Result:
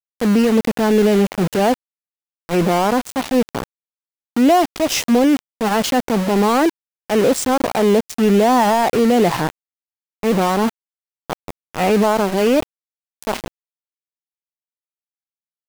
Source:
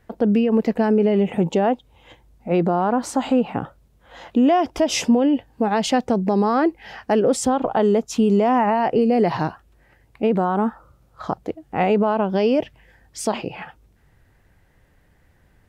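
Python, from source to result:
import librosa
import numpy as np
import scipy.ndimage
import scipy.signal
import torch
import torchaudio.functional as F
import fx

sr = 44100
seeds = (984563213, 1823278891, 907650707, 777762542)

y = fx.transient(x, sr, attack_db=-6, sustain_db=2)
y = np.where(np.abs(y) >= 10.0 ** (-23.0 / 20.0), y, 0.0)
y = F.gain(torch.from_numpy(y), 4.0).numpy()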